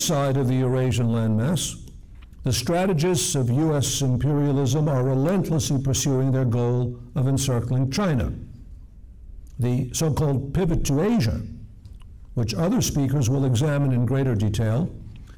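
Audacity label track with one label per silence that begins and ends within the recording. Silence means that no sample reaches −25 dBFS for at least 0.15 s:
1.710000	2.460000	silence
6.900000	7.160000	silence
8.330000	9.600000	silence
11.420000	12.370000	silence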